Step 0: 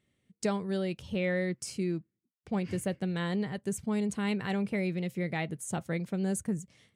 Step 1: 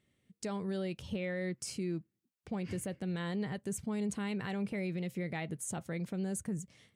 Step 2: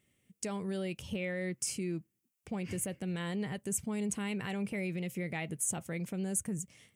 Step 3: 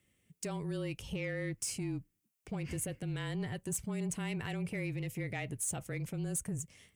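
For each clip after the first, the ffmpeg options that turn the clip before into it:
ffmpeg -i in.wav -af "alimiter=level_in=4dB:limit=-24dB:level=0:latency=1:release=94,volume=-4dB" out.wav
ffmpeg -i in.wav -af "aexciter=amount=1.8:drive=1.9:freq=2200" out.wav
ffmpeg -i in.wav -af "asoftclip=type=tanh:threshold=-29dB,afreqshift=-26" out.wav

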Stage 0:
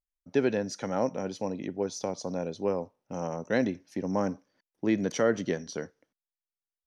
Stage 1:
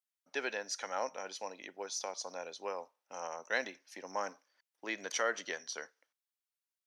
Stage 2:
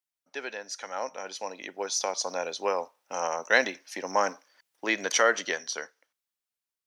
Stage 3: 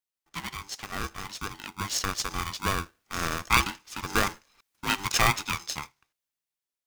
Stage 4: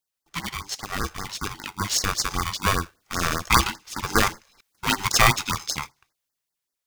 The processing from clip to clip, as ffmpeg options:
ffmpeg -i in.wav -af "highpass=1000,volume=1dB" out.wav
ffmpeg -i in.wav -af "dynaudnorm=framelen=460:gausssize=7:maxgain=12dB" out.wav
ffmpeg -i in.wav -af "aeval=exprs='val(0)*sgn(sin(2*PI*590*n/s))':channel_layout=same" out.wav
ffmpeg -i in.wav -af "afftfilt=real='re*(1-between(b*sr/1024,230*pow(3100/230,0.5+0.5*sin(2*PI*5.1*pts/sr))/1.41,230*pow(3100/230,0.5+0.5*sin(2*PI*5.1*pts/sr))*1.41))':imag='im*(1-between(b*sr/1024,230*pow(3100/230,0.5+0.5*sin(2*PI*5.1*pts/sr))/1.41,230*pow(3100/230,0.5+0.5*sin(2*PI*5.1*pts/sr))*1.41))':win_size=1024:overlap=0.75,volume=6dB" out.wav

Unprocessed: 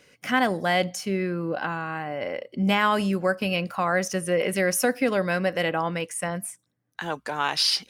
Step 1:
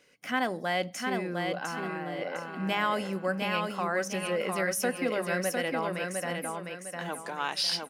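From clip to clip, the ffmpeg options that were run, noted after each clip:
ffmpeg -i in.wav -filter_complex "[0:a]equalizer=frequency=91:width=2:gain=-14.5,bandreject=frequency=50:width_type=h:width=6,bandreject=frequency=100:width_type=h:width=6,bandreject=frequency=150:width_type=h:width=6,bandreject=frequency=200:width_type=h:width=6,asplit=2[link_01][link_02];[link_02]aecho=0:1:705|1410|2115|2820:0.631|0.221|0.0773|0.0271[link_03];[link_01][link_03]amix=inputs=2:normalize=0,volume=-6.5dB" out.wav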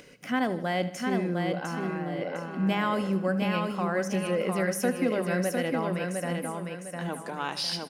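ffmpeg -i in.wav -af "lowshelf=frequency=420:gain=11,acompressor=mode=upward:threshold=-40dB:ratio=2.5,aecho=1:1:77|154|231|308|385:0.168|0.0923|0.0508|0.0279|0.0154,volume=-2.5dB" out.wav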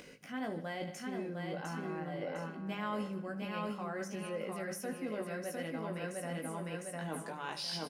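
ffmpeg -i in.wav -filter_complex "[0:a]areverse,acompressor=threshold=-35dB:ratio=6,areverse,asplit=2[link_01][link_02];[link_02]adelay=19,volume=-4.5dB[link_03];[link_01][link_03]amix=inputs=2:normalize=0,volume=-2.5dB" out.wav

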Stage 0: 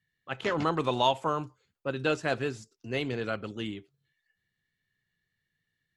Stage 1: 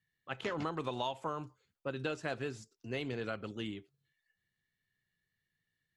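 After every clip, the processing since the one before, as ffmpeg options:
ffmpeg -i in.wav -af "acompressor=threshold=-29dB:ratio=5,volume=-4dB" out.wav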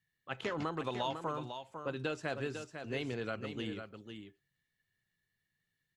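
ffmpeg -i in.wav -af "aecho=1:1:500:0.398" out.wav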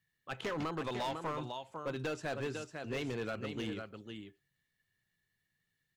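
ffmpeg -i in.wav -af "asoftclip=type=hard:threshold=-33.5dB,volume=1.5dB" out.wav

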